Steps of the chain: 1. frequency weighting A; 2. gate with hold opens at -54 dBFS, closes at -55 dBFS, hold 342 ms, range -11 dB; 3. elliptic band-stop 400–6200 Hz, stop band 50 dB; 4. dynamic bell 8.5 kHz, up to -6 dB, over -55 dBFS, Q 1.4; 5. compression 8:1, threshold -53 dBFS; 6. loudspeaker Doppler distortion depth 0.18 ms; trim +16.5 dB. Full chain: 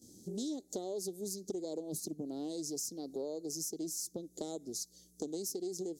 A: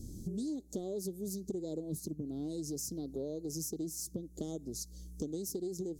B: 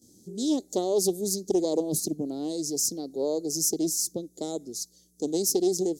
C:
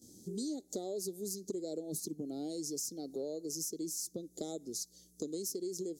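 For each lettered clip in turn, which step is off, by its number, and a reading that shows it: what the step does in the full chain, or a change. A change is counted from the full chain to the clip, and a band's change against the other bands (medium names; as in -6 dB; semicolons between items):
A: 1, 125 Hz band +10.5 dB; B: 5, mean gain reduction 10.0 dB; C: 6, 1 kHz band -2.0 dB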